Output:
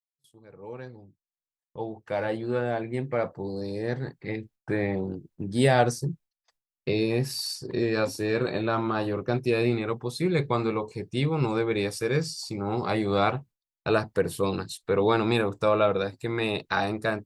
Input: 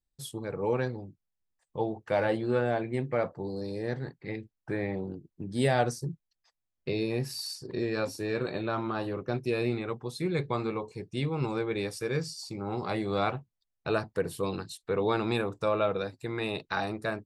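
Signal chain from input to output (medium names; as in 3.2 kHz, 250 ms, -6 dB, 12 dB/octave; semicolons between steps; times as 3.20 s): fade-in on the opening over 4.71 s; gate with hold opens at -55 dBFS; trim +5 dB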